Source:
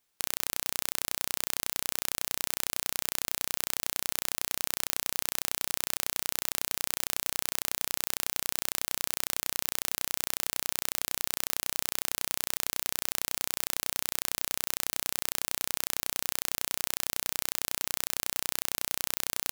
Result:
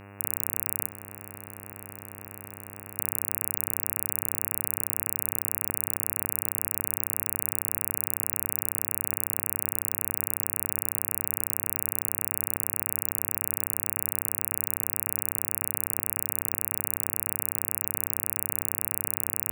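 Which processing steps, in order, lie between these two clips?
elliptic band-stop 130–8600 Hz, stop band 60 dB; high shelf 6500 Hz +7 dB; 0.86–2.97 negative-ratio compressor -44 dBFS, ratio -1; buzz 100 Hz, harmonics 28, -46 dBFS -4 dB/oct; gain -1 dB

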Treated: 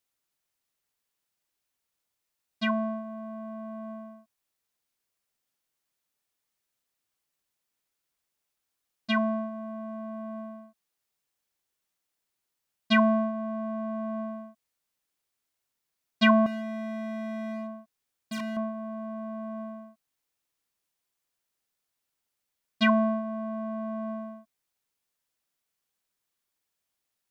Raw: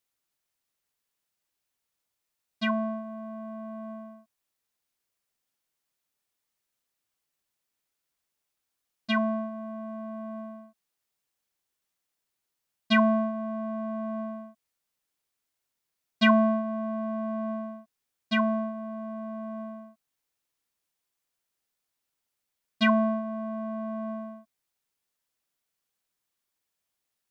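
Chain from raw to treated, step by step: 16.46–18.57 overloaded stage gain 32 dB

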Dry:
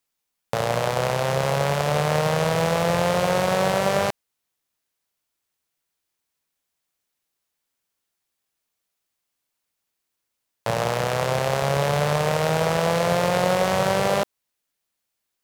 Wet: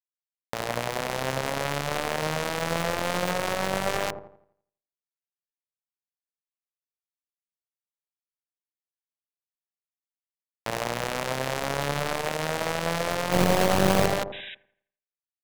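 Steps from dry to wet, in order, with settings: 13.32–14.06 half-waves squared off; notches 50/100/150/200 Hz; limiter -11 dBFS, peak gain reduction 5 dB; power-law curve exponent 2; 14.32–14.55 painted sound noise 1500–3900 Hz -40 dBFS; on a send: dark delay 84 ms, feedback 39%, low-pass 680 Hz, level -5.5 dB

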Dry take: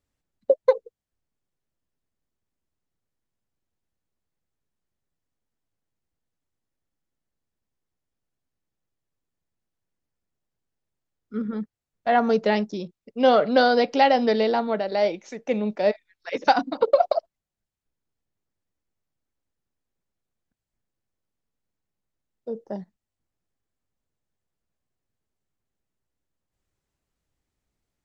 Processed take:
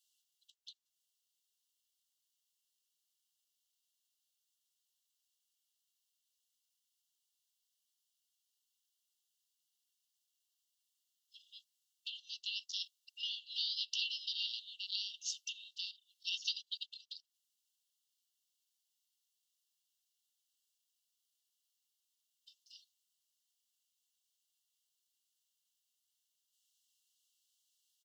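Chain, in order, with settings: compressor 16:1, threshold -28 dBFS, peak gain reduction 17.5 dB; harmoniser -3 st -5 dB; brick-wall FIR high-pass 2700 Hz; gain +8.5 dB

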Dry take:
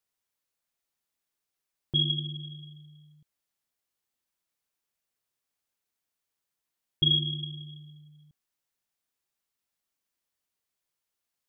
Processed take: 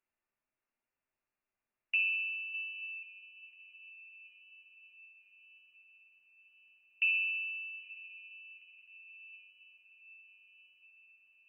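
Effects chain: inverted band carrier 2800 Hz; 2.54–3.03 tilt +4.5 dB/oct; diffused feedback echo 0.918 s, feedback 63%, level -16 dB; reverb, pre-delay 3 ms, DRR 8 dB; gain -1 dB

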